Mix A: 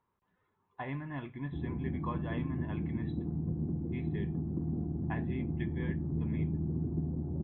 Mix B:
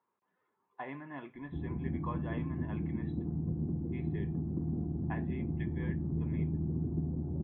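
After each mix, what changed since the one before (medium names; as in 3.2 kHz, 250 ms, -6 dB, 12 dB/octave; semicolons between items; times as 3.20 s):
speech: add high-pass 280 Hz 12 dB/octave; master: add distance through air 240 m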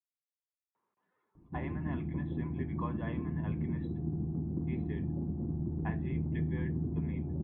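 speech: entry +0.75 s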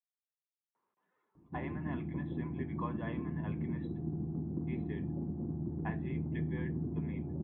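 master: add high-pass 140 Hz 6 dB/octave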